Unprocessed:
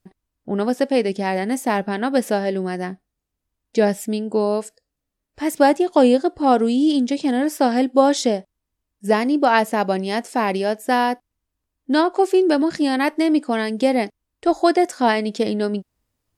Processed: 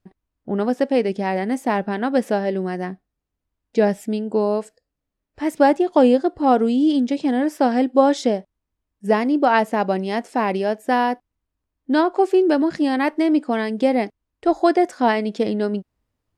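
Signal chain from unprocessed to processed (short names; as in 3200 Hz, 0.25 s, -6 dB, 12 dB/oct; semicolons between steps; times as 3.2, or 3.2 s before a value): high shelf 4500 Hz -11.5 dB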